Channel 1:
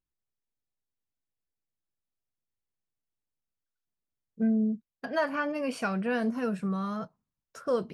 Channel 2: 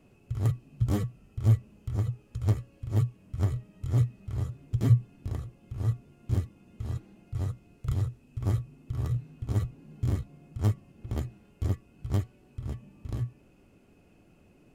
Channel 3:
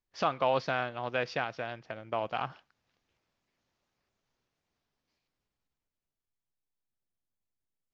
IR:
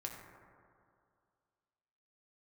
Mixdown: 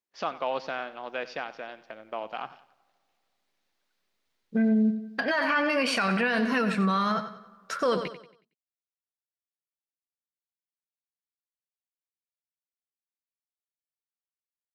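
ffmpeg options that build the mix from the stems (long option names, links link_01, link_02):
-filter_complex "[0:a]acontrast=86,equalizer=frequency=1000:width_type=o:width=1:gain=4,equalizer=frequency=2000:width_type=o:width=1:gain=10,equalizer=frequency=4000:width_type=o:width=1:gain=11,adelay=150,volume=-2dB,asplit=3[link_01][link_02][link_03];[link_02]volume=-18dB[link_04];[link_03]volume=-12dB[link_05];[2:a]highpass=190,volume=-2.5dB,asplit=3[link_06][link_07][link_08];[link_07]volume=-22.5dB[link_09];[link_08]volume=-16.5dB[link_10];[3:a]atrim=start_sample=2205[link_11];[link_04][link_09]amix=inputs=2:normalize=0[link_12];[link_12][link_11]afir=irnorm=-1:irlink=0[link_13];[link_05][link_10]amix=inputs=2:normalize=0,aecho=0:1:92|184|276|368|460:1|0.39|0.152|0.0593|0.0231[link_14];[link_01][link_06][link_13][link_14]amix=inputs=4:normalize=0,equalizer=frequency=120:width=5.8:gain=-14,alimiter=limit=-17.5dB:level=0:latency=1:release=44"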